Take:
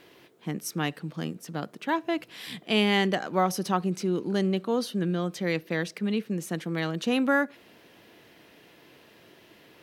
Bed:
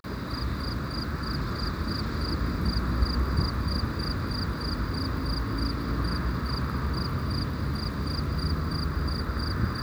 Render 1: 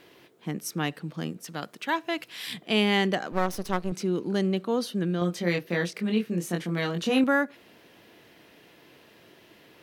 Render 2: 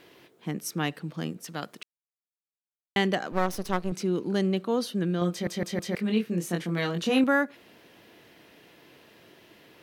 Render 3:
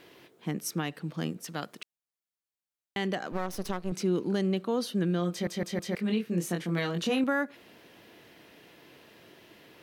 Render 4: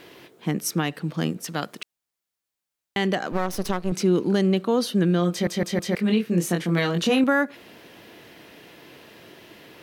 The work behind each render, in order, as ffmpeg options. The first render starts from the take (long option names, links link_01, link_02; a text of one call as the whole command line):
ffmpeg -i in.wav -filter_complex "[0:a]asettb=1/sr,asplit=3[link_01][link_02][link_03];[link_01]atrim=end=1.444[link_04];[link_02]atrim=start=1.44:end=2.54,asetpts=PTS-STARTPTS,afade=type=in:duration=0.004:curve=qsin,afade=type=out:start_time=1.096:duration=0.004:curve=qsin,tiltshelf=frequency=910:gain=-5[link_05];[link_03]atrim=start=2.536[link_06];[link_04][link_05]acrossfade=duration=0.004:curve1=hsin:curve2=qsin[link_07];[link_07][link_06]acrossfade=duration=0.004:curve1=qsin:curve2=hsin,asettb=1/sr,asplit=3[link_08][link_09][link_10];[link_08]atrim=end=3.324[link_11];[link_09]atrim=start=3.32:end=3.92,asetpts=PTS-STARTPTS,afade=type=in:duration=0.004:curve=qsin,afade=type=out:start_time=0.596:duration=0.004:curve=qsin,aeval=exprs='max(val(0),0)':channel_layout=same[link_12];[link_10]atrim=start=3.916[link_13];[link_11][link_12]acrossfade=duration=0.004:curve1=hsin:curve2=qsin[link_14];[link_14][link_13]acrossfade=duration=0.004:curve1=qsin:curve2=hsin,asettb=1/sr,asplit=3[link_15][link_16][link_17];[link_15]atrim=end=5.194[link_18];[link_16]atrim=start=5.19:end=7.24,asetpts=PTS-STARTPTS,afade=type=in:duration=0.004:curve=qsin,afade=type=out:start_time=2.046:duration=0.004:curve=qsin,asplit=2[link_19][link_20];[link_20]adelay=23,volume=-3dB[link_21];[link_19][link_21]amix=inputs=2:normalize=0,atrim=end_sample=90405[link_22];[link_17]atrim=start=7.236[link_23];[link_18][link_22]acrossfade=duration=0.004:curve1=hsin:curve2=qsin[link_24];[link_24][link_23]acrossfade=duration=0.004:curve1=qsin:curve2=hsin" out.wav
ffmpeg -i in.wav -filter_complex "[0:a]asplit=7[link_01][link_02][link_03][link_04][link_05][link_06][link_07];[link_01]atrim=end=1.83,asetpts=PTS-STARTPTS,afade=type=out:start_time=1.826:duration=0.004:curve=hsin[link_08];[link_02]atrim=start=1.83:end=2.96,asetpts=PTS-STARTPTS,volume=0[link_09];[link_03]atrim=start=2.96:end=5.472,asetpts=PTS-STARTPTS,afade=type=in:duration=0.004:curve=hsin[link_10];[link_04]atrim=start=5.308:end=5.472[link_11];[link_05]atrim=start=5.308:end=5.472[link_12];[link_06]atrim=start=5.308:end=5.472[link_13];[link_07]atrim=start=5.948[link_14];[link_08][link_09][link_10]concat=n=3:v=0:a=1[link_15];[link_15][link_11]acrossfade=duration=0.004:curve1=hsin:curve2=hsin[link_16];[link_16][link_12]acrossfade=duration=0.004:curve1=hsin:curve2=hsin[link_17];[link_17][link_13]acrossfade=duration=0.004:curve1=hsin:curve2=hsin[link_18];[link_18][link_14]acrossfade=duration=0.004:curve1=hsin:curve2=hsin" out.wav
ffmpeg -i in.wav -af "alimiter=limit=-19dB:level=0:latency=1:release=218" out.wav
ffmpeg -i in.wav -af "volume=7.5dB" out.wav